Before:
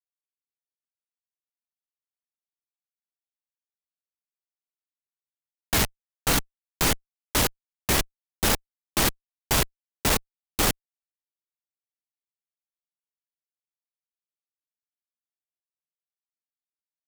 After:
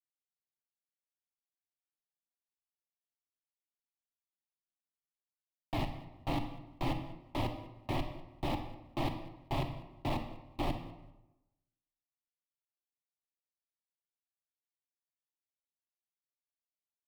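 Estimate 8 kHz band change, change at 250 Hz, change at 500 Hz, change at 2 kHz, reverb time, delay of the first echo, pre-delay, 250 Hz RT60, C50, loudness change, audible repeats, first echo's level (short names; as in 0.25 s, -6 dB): -34.0 dB, -6.5 dB, -9.5 dB, -17.5 dB, 0.95 s, 0.197 s, 32 ms, 1.0 s, 8.5 dB, -14.0 dB, 2, -21.5 dB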